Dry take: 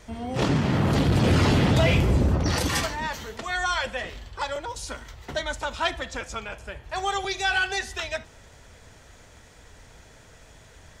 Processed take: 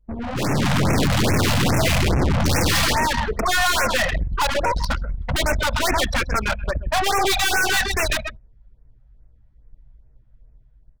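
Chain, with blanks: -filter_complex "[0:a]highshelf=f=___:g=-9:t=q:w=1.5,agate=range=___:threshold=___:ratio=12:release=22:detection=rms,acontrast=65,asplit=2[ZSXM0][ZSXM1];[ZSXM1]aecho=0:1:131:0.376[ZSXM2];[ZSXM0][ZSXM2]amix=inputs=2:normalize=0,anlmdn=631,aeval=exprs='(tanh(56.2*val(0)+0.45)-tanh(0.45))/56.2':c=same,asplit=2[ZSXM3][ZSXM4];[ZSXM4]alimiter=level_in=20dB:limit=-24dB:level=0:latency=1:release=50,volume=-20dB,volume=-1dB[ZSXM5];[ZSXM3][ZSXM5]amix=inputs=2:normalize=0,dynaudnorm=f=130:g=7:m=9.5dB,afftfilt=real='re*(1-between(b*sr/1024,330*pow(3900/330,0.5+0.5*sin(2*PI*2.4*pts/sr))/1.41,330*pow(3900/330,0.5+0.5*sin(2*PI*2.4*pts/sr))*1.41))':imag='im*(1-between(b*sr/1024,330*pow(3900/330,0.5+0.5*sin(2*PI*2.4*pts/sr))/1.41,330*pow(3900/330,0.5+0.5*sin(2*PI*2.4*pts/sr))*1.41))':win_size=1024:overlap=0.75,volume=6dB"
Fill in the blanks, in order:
6.4k, -17dB, -44dB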